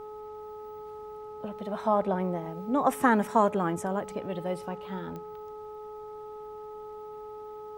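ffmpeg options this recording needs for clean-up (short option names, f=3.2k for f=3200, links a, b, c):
-af "adeclick=t=4,bandreject=f=425.4:t=h:w=4,bandreject=f=850.8:t=h:w=4,bandreject=f=1.2762k:t=h:w=4"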